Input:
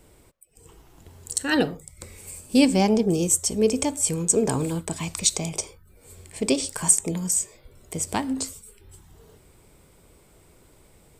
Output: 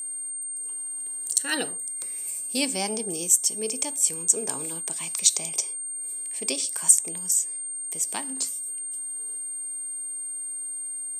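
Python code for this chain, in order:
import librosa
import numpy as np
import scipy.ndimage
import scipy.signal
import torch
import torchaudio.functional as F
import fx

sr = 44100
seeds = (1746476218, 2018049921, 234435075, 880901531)

y = scipy.signal.sosfilt(scipy.signal.butter(2, 170.0, 'highpass', fs=sr, output='sos'), x)
y = fx.tilt_eq(y, sr, slope=3.0)
y = fx.rider(y, sr, range_db=3, speed_s=2.0)
y = y + 10.0 ** (-23.0 / 20.0) * np.sin(2.0 * np.pi * 8700.0 * np.arange(len(y)) / sr)
y = y * 10.0 ** (-7.5 / 20.0)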